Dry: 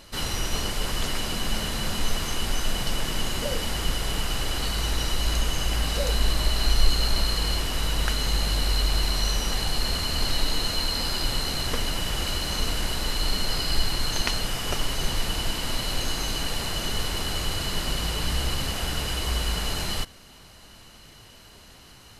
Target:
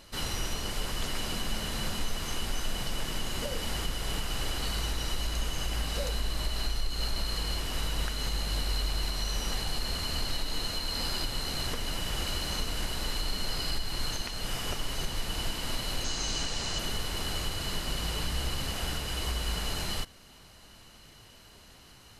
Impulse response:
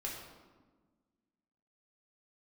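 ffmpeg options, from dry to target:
-filter_complex "[0:a]asettb=1/sr,asplit=3[link_01][link_02][link_03];[link_01]atrim=end=16.044[link_04];[link_02]atrim=start=16.04:end=16.79,asetpts=PTS-STARTPTS,afade=type=in:duration=0.004:curve=qsin,afade=type=out:start_time=0.746:duration=0.004:curve=qsin,lowpass=frequency=6600:width_type=q:width=2.1[link_05];[link_03]atrim=start=16.786[link_06];[link_04][link_05]acrossfade=duration=0.004:curve1=hsin:curve2=qsin[link_07];[link_07][link_06]acrossfade=duration=0.004:curve1=qsin:curve2=hsin,alimiter=limit=-16dB:level=0:latency=1:release=247,volume=-4.5dB"

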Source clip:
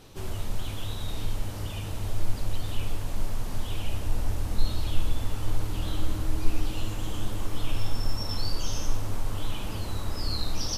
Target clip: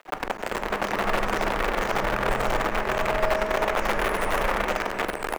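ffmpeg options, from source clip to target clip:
ffmpeg -i in.wav -filter_complex "[0:a]acrossover=split=380|2900[link_01][link_02][link_03];[link_03]acontrast=38[link_04];[link_01][link_02][link_04]amix=inputs=3:normalize=0,bandreject=frequency=50:width_type=h:width=6,bandreject=frequency=100:width_type=h:width=6,bandreject=frequency=150:width_type=h:width=6,bandreject=frequency=200:width_type=h:width=6,bandreject=frequency=250:width_type=h:width=6,bandreject=frequency=300:width_type=h:width=6,bandreject=frequency=350:width_type=h:width=6,bandreject=frequency=400:width_type=h:width=6,dynaudnorm=framelen=270:gausssize=11:maxgain=9.5dB,asetrate=88200,aresample=44100,aemphasis=mode=reproduction:type=75fm,aecho=1:1:93|186|279|372:0.355|0.138|0.054|0.021,acrusher=bits=5:dc=4:mix=0:aa=0.000001,acrossover=split=350 2800:gain=0.0631 1 0.141[link_05][link_06][link_07];[link_05][link_06][link_07]amix=inputs=3:normalize=0,volume=7dB" out.wav

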